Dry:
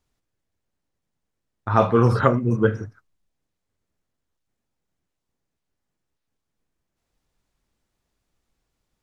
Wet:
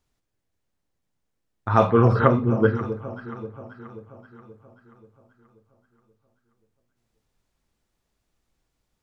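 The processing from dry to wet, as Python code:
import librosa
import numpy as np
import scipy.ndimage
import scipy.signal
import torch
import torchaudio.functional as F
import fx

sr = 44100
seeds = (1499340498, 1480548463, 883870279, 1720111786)

y = fx.lowpass(x, sr, hz=3400.0, slope=12, at=(1.9, 2.85))
y = fx.echo_alternate(y, sr, ms=266, hz=860.0, feedback_pct=71, wet_db=-11.0)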